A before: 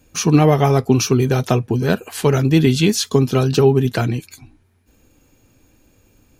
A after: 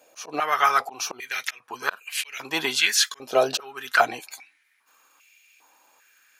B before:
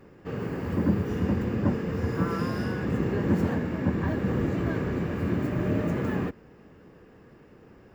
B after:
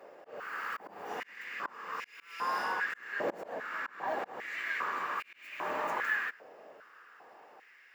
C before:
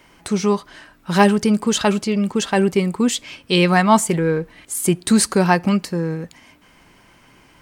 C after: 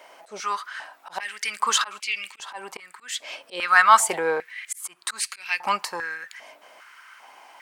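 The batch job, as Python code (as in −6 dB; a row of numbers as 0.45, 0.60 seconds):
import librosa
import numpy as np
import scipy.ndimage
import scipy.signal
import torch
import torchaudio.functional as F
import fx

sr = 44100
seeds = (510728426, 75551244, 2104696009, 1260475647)

y = fx.auto_swell(x, sr, attack_ms=354.0)
y = fx.filter_held_highpass(y, sr, hz=2.5, low_hz=630.0, high_hz=2400.0)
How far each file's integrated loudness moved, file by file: −7.5, −8.0, −5.5 LU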